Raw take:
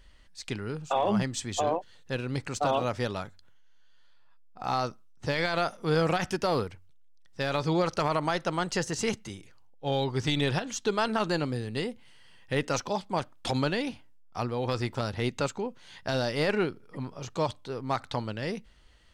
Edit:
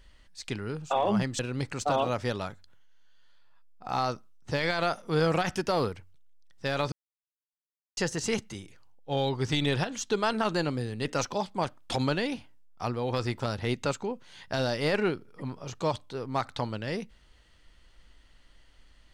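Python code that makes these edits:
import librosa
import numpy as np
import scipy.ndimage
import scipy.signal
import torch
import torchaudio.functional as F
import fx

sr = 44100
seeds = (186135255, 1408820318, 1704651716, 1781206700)

y = fx.edit(x, sr, fx.cut(start_s=1.39, length_s=0.75),
    fx.silence(start_s=7.67, length_s=1.05),
    fx.cut(start_s=11.8, length_s=0.8), tone=tone)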